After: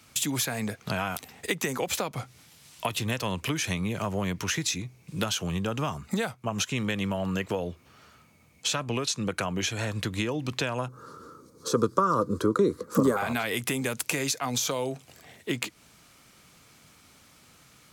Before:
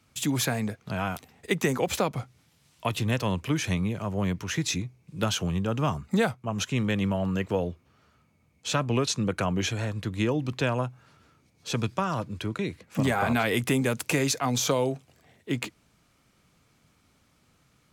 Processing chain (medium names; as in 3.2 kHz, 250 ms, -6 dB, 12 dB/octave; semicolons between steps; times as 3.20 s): tilt EQ +1.5 dB/octave; compression 6:1, threshold -35 dBFS, peak gain reduction 14.5 dB; 10.88–13.17 s: FFT filter 120 Hz 0 dB, 500 Hz +14 dB, 720 Hz -10 dB, 1.2 kHz +12 dB, 1.7 kHz -7 dB, 2.5 kHz -20 dB, 4.2 kHz -5 dB, 7.8 kHz -2 dB; trim +8.5 dB